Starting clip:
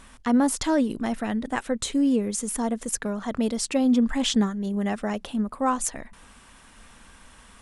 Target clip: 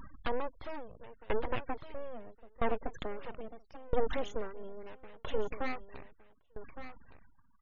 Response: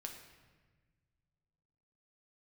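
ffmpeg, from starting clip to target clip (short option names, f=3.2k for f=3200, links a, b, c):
-filter_complex "[0:a]crystalizer=i=2:c=0,deesser=0.8,lowpass=2.5k,acompressor=threshold=-33dB:ratio=2,aresample=16000,aeval=exprs='abs(val(0))':c=same,aresample=44100,afftfilt=real='re*gte(hypot(re,im),0.00562)':imag='im*gte(hypot(re,im),0.00562)':win_size=1024:overlap=0.75,asplit=2[a][b];[b]aecho=0:1:1163:0.2[c];[a][c]amix=inputs=2:normalize=0,aeval=exprs='val(0)*pow(10,-26*if(lt(mod(0.76*n/s,1),2*abs(0.76)/1000),1-mod(0.76*n/s,1)/(2*abs(0.76)/1000),(mod(0.76*n/s,1)-2*abs(0.76)/1000)/(1-2*abs(0.76)/1000))/20)':c=same,volume=6dB"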